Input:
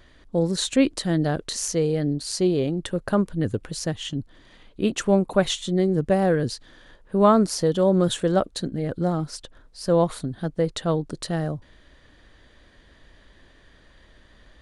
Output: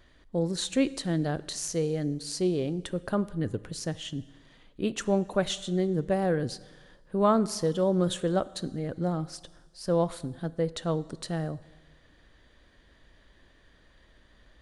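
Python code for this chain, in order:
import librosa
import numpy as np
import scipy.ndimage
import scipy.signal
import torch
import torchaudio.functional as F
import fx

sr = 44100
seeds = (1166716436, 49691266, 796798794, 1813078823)

y = fx.rev_plate(x, sr, seeds[0], rt60_s=1.4, hf_ratio=0.9, predelay_ms=0, drr_db=16.5)
y = y * 10.0 ** (-6.0 / 20.0)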